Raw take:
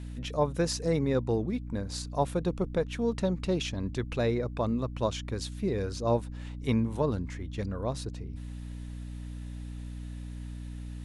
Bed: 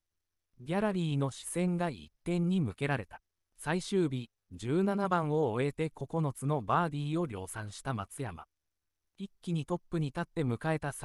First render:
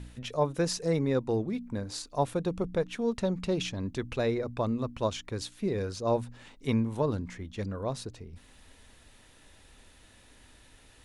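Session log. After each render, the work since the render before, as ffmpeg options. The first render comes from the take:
-af "bandreject=f=60:t=h:w=4,bandreject=f=120:t=h:w=4,bandreject=f=180:t=h:w=4,bandreject=f=240:t=h:w=4,bandreject=f=300:t=h:w=4"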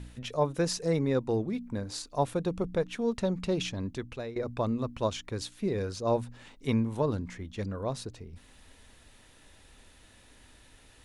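-filter_complex "[0:a]asplit=2[a][b];[a]atrim=end=4.36,asetpts=PTS-STARTPTS,afade=t=out:st=3.8:d=0.56:silence=0.16788[c];[b]atrim=start=4.36,asetpts=PTS-STARTPTS,afade=t=in:d=0.004:c=hsin:silence=0.16788[d];[c][d]concat=n=2:v=0:a=1"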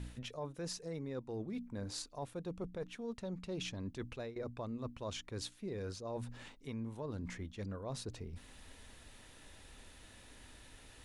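-af "alimiter=limit=-21dB:level=0:latency=1:release=295,areverse,acompressor=threshold=-40dB:ratio=5,areverse"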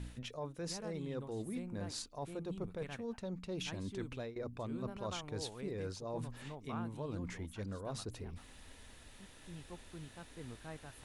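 -filter_complex "[1:a]volume=-17dB[a];[0:a][a]amix=inputs=2:normalize=0"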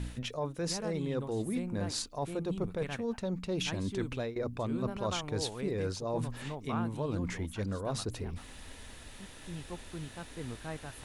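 -af "volume=7.5dB"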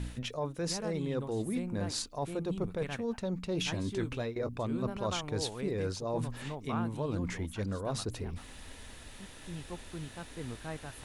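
-filter_complex "[0:a]asettb=1/sr,asplit=3[a][b][c];[a]atrim=end=3.534[d];[b]atrim=start=3.53:end=4.49,asetpts=PTS-STARTPTS,afade=t=in:d=0.004:c=qsin,afade=t=out:st=0.956:d=0.004:c=qsin,asplit=2[e][f];[f]adelay=18,volume=-9.5dB[g];[e][g]amix=inputs=2:normalize=0,atrim=end_sample=42336[h];[c]atrim=start=4.486[i];[d][h]acrossfade=d=0.004:c1=hsin:c2=qsin[j];[j][i]acrossfade=d=0.004:c1=qsin:c2=hsin"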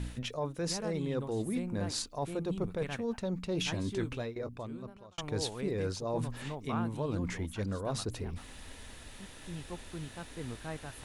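-filter_complex "[0:a]asplit=2[a][b];[a]atrim=end=5.18,asetpts=PTS-STARTPTS,afade=t=out:st=3.99:d=1.19[c];[b]atrim=start=5.18,asetpts=PTS-STARTPTS,afade=t=in:d=0.004:c=hsin[d];[c][d]concat=n=2:v=0:a=1"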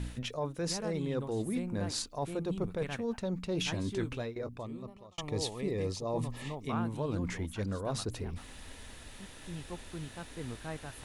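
-filter_complex "[0:a]asettb=1/sr,asplit=3[a][b][c];[a]atrim=end=4.614[d];[b]atrim=start=4.61:end=6.69,asetpts=PTS-STARTPTS,afade=t=in:d=0.004:c=qsin,afade=t=out:st=2.076:d=0.004:c=qsin,asuperstop=centerf=1500:order=8:qfactor=4.4[e];[c]atrim=start=6.686[f];[d][e]acrossfade=d=0.004:c1=hsin:c2=qsin[g];[g][f]acrossfade=d=0.004:c1=qsin:c2=hsin"

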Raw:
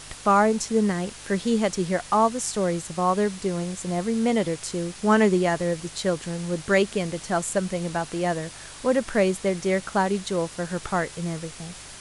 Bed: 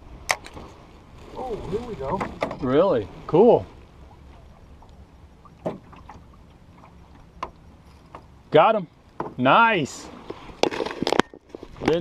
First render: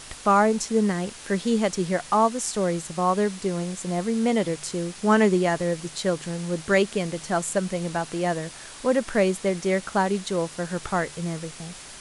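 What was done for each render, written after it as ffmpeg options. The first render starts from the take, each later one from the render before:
-af "bandreject=f=50:t=h:w=4,bandreject=f=100:t=h:w=4,bandreject=f=150:t=h:w=4"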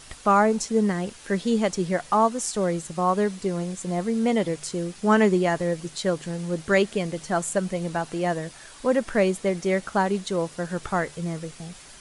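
-af "afftdn=nr=6:nf=-42"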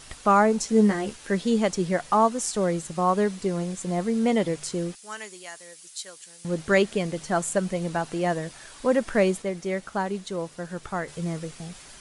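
-filter_complex "[0:a]asettb=1/sr,asplit=3[a][b][c];[a]atrim=end=0.674[d];[b]atrim=start=0.67:end=1.16,asetpts=PTS-STARTPTS,afade=t=in:d=0.004:c=qsin,afade=t=out:st=0.486:d=0.004:c=qsin,asplit=2[e][f];[f]adelay=14,volume=-4dB[g];[e][g]amix=inputs=2:normalize=0,atrim=end_sample=21609[h];[c]atrim=start=1.156[i];[d][h]acrossfade=d=0.004:c1=hsin:c2=qsin[j];[j][i]acrossfade=d=0.004:c1=qsin:c2=hsin,asettb=1/sr,asplit=3[k][l][m];[k]atrim=end=4.954[n];[l]atrim=start=4.95:end=6.45,asetpts=PTS-STARTPTS,afade=t=in:d=0.004:c=qsin,afade=t=out:st=1.496:d=0.004:c=qsin,aderivative[o];[m]atrim=start=6.446[p];[n][o]acrossfade=d=0.004:c1=hsin:c2=qsin[q];[q][p]acrossfade=d=0.004:c1=qsin:c2=hsin,asplit=3[r][s][t];[r]atrim=end=9.422[u];[s]atrim=start=9.418:end=11.082,asetpts=PTS-STARTPTS,volume=-5dB[v];[t]atrim=start=11.078[w];[u][v]acrossfade=d=0.004:c1=hsin:c2=hsin[x];[x][w]acrossfade=d=0.004:c1=hsin:c2=hsin"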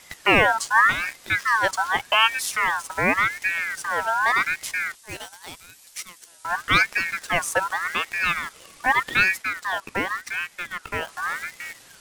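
-filter_complex "[0:a]asplit=2[a][b];[b]acrusher=bits=5:mix=0:aa=0.000001,volume=-4dB[c];[a][c]amix=inputs=2:normalize=0,aeval=exprs='val(0)*sin(2*PI*1600*n/s+1600*0.3/0.86*sin(2*PI*0.86*n/s))':c=same"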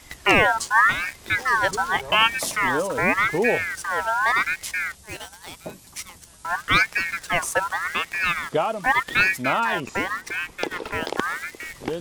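-filter_complex "[1:a]volume=-7.5dB[a];[0:a][a]amix=inputs=2:normalize=0"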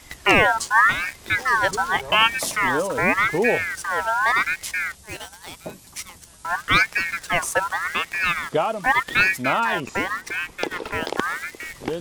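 -af "volume=1dB"

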